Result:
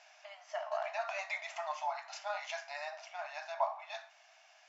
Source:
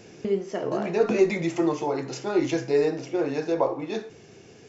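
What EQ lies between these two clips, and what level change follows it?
brick-wall FIR high-pass 590 Hz; air absorption 94 m; -4.0 dB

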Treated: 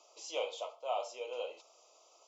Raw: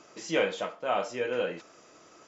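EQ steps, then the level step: HPF 560 Hz 24 dB/oct; Butterworth band-stop 1700 Hz, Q 1; -4.5 dB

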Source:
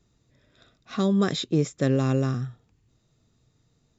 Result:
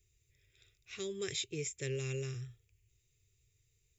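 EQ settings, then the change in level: EQ curve 100 Hz 0 dB, 240 Hz -30 dB, 400 Hz -5 dB, 640 Hz -24 dB, 1100 Hz -22 dB, 1600 Hz -12 dB, 2300 Hz +6 dB, 4100 Hz -6 dB, 11000 Hz +13 dB; -4.5 dB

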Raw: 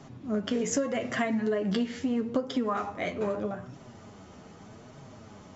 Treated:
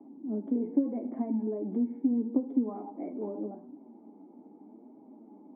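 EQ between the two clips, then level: vocal tract filter u; Chebyshev high-pass 220 Hz, order 4; +7.5 dB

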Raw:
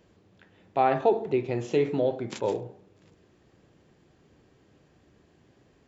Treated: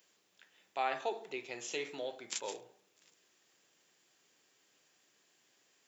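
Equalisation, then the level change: HPF 120 Hz; differentiator; bell 4200 Hz -2.5 dB 0.29 oct; +7.5 dB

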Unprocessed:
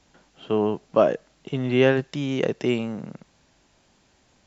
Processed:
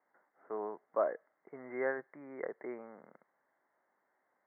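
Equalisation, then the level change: HPF 620 Hz 12 dB/oct; Chebyshev low-pass 2100 Hz, order 8; air absorption 250 m; -8.5 dB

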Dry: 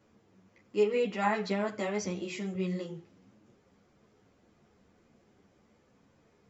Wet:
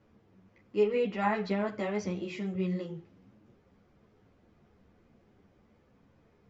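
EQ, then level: air absorption 130 m; low shelf 88 Hz +9.5 dB; 0.0 dB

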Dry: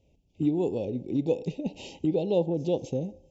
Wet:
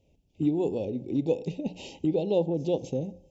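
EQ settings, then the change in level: notches 60/120/180 Hz; 0.0 dB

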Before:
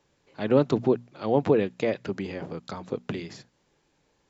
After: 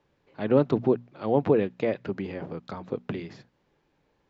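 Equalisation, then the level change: air absorption 110 m; high shelf 5100 Hz -8.5 dB; 0.0 dB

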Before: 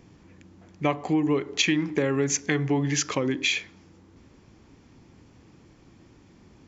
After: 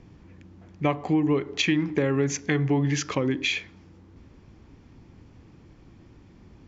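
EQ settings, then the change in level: air absorption 85 m; low shelf 96 Hz +9.5 dB; 0.0 dB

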